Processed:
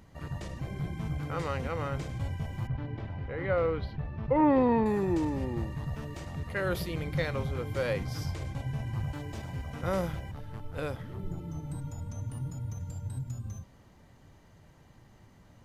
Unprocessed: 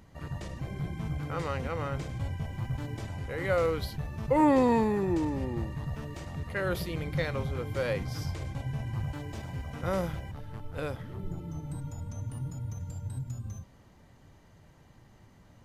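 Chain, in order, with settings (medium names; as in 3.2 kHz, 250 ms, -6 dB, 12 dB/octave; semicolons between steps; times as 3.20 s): 2.67–4.86 s: distance through air 330 m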